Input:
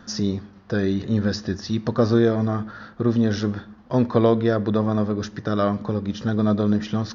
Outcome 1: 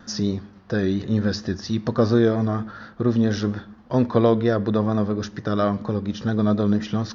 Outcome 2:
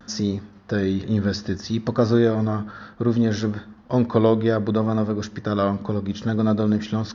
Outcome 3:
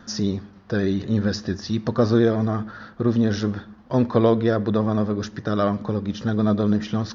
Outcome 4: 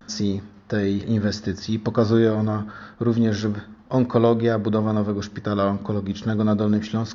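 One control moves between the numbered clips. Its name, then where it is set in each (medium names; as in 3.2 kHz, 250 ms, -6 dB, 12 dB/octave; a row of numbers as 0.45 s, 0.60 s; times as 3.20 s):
vibrato, rate: 4.3 Hz, 0.65 Hz, 15 Hz, 0.31 Hz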